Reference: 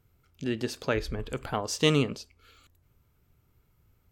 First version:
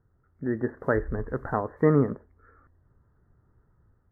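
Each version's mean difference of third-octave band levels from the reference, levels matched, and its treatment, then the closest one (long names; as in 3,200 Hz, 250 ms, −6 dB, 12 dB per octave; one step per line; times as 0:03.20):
8.5 dB: Chebyshev low-pass filter 1,900 Hz, order 8
automatic gain control gain up to 4 dB
WMA 32 kbit/s 32,000 Hz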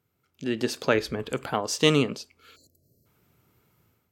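1.5 dB: time-frequency box erased 0:02.56–0:03.06, 700–4,000 Hz
high-pass filter 150 Hz 12 dB per octave
automatic gain control gain up to 11 dB
level −4 dB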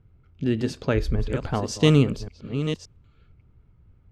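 6.5 dB: delay that plays each chunk backwards 571 ms, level −9.5 dB
low-pass that shuts in the quiet parts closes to 2,700 Hz, open at −24.5 dBFS
low-shelf EQ 340 Hz +11.5 dB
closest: second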